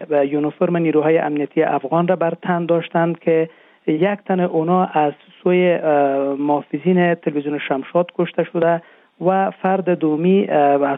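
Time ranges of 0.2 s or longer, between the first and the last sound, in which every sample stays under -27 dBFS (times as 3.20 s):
3.46–3.87 s
5.12–5.46 s
8.78–9.21 s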